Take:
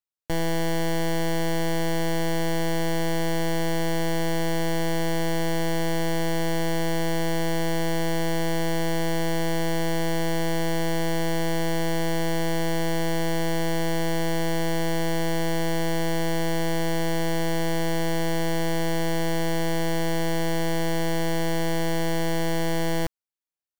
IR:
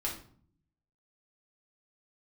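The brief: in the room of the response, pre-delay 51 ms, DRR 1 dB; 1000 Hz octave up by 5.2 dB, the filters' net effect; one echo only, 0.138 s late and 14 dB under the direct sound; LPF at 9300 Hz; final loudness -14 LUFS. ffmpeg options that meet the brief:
-filter_complex "[0:a]lowpass=9.3k,equalizer=f=1k:t=o:g=6.5,aecho=1:1:138:0.2,asplit=2[a][b];[1:a]atrim=start_sample=2205,adelay=51[c];[b][c]afir=irnorm=-1:irlink=0,volume=-4.5dB[d];[a][d]amix=inputs=2:normalize=0,volume=6dB"

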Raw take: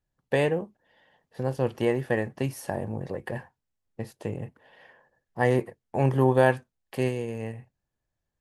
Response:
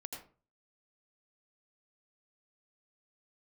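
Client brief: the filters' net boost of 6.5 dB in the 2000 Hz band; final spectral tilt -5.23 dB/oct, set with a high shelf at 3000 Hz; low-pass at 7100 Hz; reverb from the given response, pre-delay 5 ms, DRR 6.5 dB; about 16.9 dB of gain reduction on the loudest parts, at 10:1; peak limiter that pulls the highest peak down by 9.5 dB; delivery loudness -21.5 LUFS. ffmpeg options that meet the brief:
-filter_complex "[0:a]lowpass=7.1k,equalizer=f=2k:t=o:g=6,highshelf=f=3k:g=5.5,acompressor=threshold=-32dB:ratio=10,alimiter=level_in=4dB:limit=-24dB:level=0:latency=1,volume=-4dB,asplit=2[a][b];[1:a]atrim=start_sample=2205,adelay=5[c];[b][c]afir=irnorm=-1:irlink=0,volume=-4dB[d];[a][d]amix=inputs=2:normalize=0,volume=20dB"

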